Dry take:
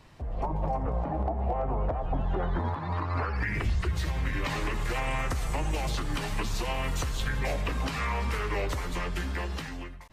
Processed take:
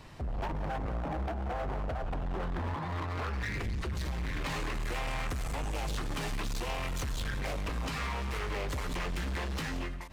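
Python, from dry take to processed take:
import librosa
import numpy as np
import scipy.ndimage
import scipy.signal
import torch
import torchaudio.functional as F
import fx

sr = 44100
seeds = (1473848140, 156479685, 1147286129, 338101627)

p1 = fx.rider(x, sr, range_db=5, speed_s=0.5)
p2 = np.clip(10.0 ** (32.0 / 20.0) * p1, -1.0, 1.0) / 10.0 ** (32.0 / 20.0)
y = p2 + fx.echo_single(p2, sr, ms=176, db=-15.5, dry=0)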